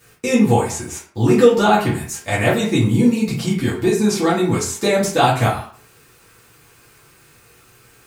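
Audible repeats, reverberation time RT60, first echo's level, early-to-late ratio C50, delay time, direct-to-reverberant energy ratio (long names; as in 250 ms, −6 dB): no echo audible, 0.50 s, no echo audible, 6.0 dB, no echo audible, −8.0 dB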